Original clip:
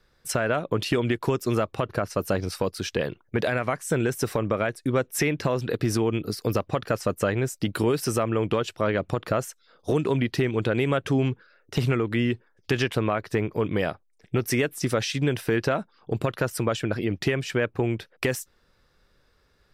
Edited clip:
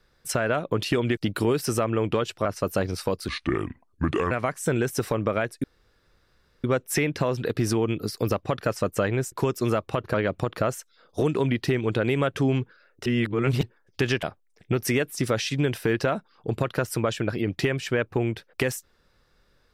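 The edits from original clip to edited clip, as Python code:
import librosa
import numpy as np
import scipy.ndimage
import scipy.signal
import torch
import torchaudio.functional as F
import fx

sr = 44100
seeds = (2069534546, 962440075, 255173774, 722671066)

y = fx.edit(x, sr, fx.swap(start_s=1.17, length_s=0.82, other_s=7.56, other_length_s=1.28),
    fx.speed_span(start_s=2.82, length_s=0.73, speed=0.71),
    fx.insert_room_tone(at_s=4.88, length_s=1.0),
    fx.reverse_span(start_s=11.76, length_s=0.57),
    fx.cut(start_s=12.93, length_s=0.93), tone=tone)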